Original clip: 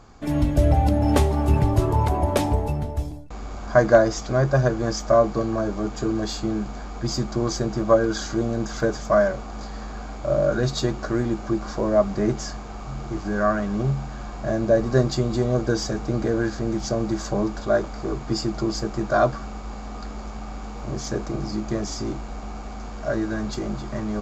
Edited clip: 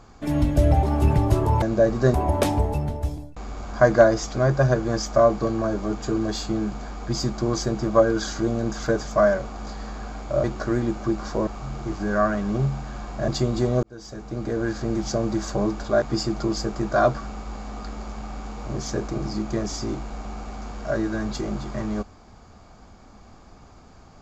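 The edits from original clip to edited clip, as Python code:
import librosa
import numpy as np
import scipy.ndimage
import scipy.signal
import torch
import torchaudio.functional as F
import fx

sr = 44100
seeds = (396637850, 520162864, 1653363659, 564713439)

y = fx.edit(x, sr, fx.cut(start_s=0.83, length_s=0.46),
    fx.cut(start_s=10.38, length_s=0.49),
    fx.cut(start_s=11.9, length_s=0.82),
    fx.move(start_s=14.53, length_s=0.52, to_s=2.08),
    fx.fade_in_span(start_s=15.6, length_s=1.05),
    fx.cut(start_s=17.79, length_s=0.41), tone=tone)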